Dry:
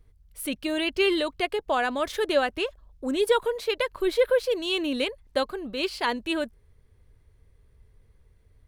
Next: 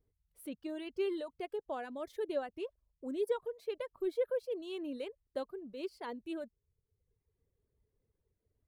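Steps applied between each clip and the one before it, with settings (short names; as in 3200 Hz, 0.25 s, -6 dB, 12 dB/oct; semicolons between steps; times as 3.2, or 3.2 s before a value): EQ curve 400 Hz 0 dB, 1300 Hz -17 dB, 2700 Hz -24 dB, 6700 Hz -29 dB; reverb removal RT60 0.99 s; tilt +4 dB/oct; gain -4 dB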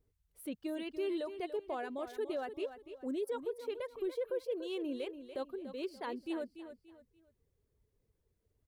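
limiter -32 dBFS, peak gain reduction 9.5 dB; feedback echo 0.289 s, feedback 31%, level -11 dB; gain +2 dB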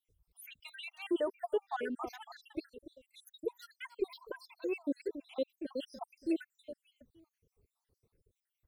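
random spectral dropouts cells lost 72%; gain +7 dB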